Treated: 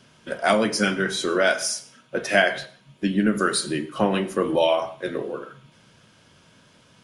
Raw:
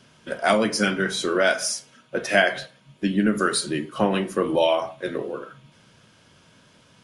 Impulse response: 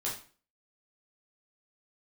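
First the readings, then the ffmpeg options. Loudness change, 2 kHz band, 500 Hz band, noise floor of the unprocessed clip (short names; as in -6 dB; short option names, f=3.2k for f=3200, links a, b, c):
0.0 dB, 0.0 dB, 0.0 dB, -56 dBFS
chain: -filter_complex "[0:a]asplit=2[a][b];[1:a]atrim=start_sample=2205,adelay=87[c];[b][c]afir=irnorm=-1:irlink=0,volume=-23dB[d];[a][d]amix=inputs=2:normalize=0"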